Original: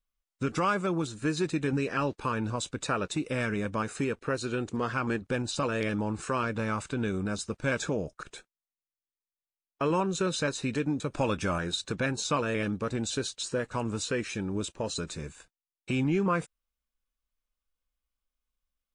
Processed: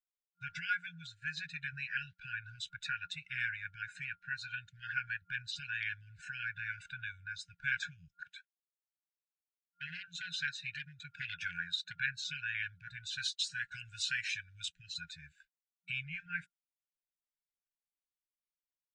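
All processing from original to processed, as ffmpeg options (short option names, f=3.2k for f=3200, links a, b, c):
-filter_complex "[0:a]asettb=1/sr,asplit=3[a][b][c];[a]atrim=end=8.204[d];[b]atrim=start=8.2:end=11.98,asetpts=PTS-STARTPTS,afade=t=in:d=0.004:c=qsin,afade=t=out:st=3.776:d=0.004:c=qsin,aeval=exprs='0.0841*(abs(mod(val(0)/0.0841+3,4)-2)-1)':c=same,highpass=100[e];[c]atrim=start=11.976[f];[d][e]acrossfade=d=0.004:c1=hsin:c2=qsin[g];[g][f]acrossfade=d=0.004:c1=qsin:c2=hsin,asettb=1/sr,asplit=3[h][i][j];[h]atrim=end=13.184[k];[i]atrim=start=13.18:end=14.7,asetpts=PTS-STARTPTS,afade=t=in:d=0.004:c=qsin,afade=t=out:st=1.516:d=0.004:c=qsin,agate=range=-33dB:threshold=-47dB:ratio=3:release=100:detection=peak,highshelf=f=3.1k:g=9.5[l];[j]atrim=start=14.696[m];[k][l]acrossfade=d=0.004:c1=hsin:c2=qsin[n];[n][m]acrossfade=d=0.004:c1=qsin:c2=hsin,afftdn=nr=14:nf=-45,acrossover=split=500 4500:gain=0.126 1 0.0708[o][p][q];[o][p][q]amix=inputs=3:normalize=0,afftfilt=real='re*(1-between(b*sr/4096,180,1400))':imag='im*(1-between(b*sr/4096,180,1400))':win_size=4096:overlap=0.75"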